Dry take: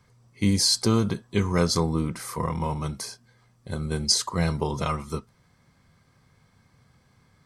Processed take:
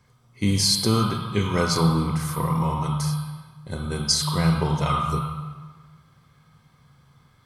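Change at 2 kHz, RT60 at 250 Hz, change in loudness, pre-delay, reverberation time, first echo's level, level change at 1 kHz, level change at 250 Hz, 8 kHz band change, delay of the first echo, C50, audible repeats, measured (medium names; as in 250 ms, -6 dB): +3.0 dB, 1.6 s, +2.5 dB, 23 ms, 1.5 s, no echo, +5.5 dB, +2.0 dB, +0.5 dB, no echo, 1.5 dB, no echo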